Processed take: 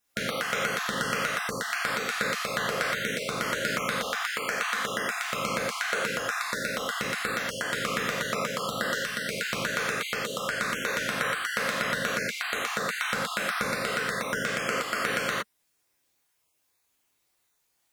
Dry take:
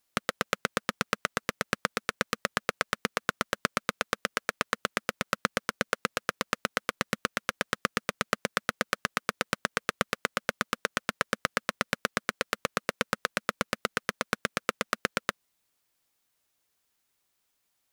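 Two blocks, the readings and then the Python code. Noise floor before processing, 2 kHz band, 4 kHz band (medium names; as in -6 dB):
-77 dBFS, +4.0 dB, +3.5 dB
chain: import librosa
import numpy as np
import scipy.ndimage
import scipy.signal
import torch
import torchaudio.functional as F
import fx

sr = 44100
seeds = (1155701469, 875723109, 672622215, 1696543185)

y = fx.spec_dropout(x, sr, seeds[0], share_pct=25)
y = fx.rev_gated(y, sr, seeds[1], gate_ms=140, shape='flat', drr_db=-7.5)
y = y * 10.0 ** (-3.5 / 20.0)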